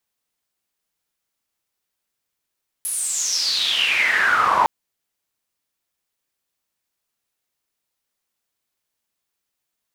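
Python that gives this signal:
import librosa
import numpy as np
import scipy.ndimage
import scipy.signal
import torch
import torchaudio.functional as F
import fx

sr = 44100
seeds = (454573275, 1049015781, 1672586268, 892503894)

y = fx.riser_noise(sr, seeds[0], length_s=1.81, colour='pink', kind='bandpass', start_hz=11000.0, end_hz=900.0, q=8.7, swell_db=8.0, law='exponential')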